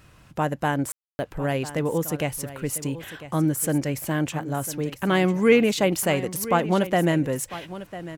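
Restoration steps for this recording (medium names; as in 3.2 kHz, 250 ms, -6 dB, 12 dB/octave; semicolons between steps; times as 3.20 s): de-click; room tone fill 0.92–1.19 s; inverse comb 1000 ms -14.5 dB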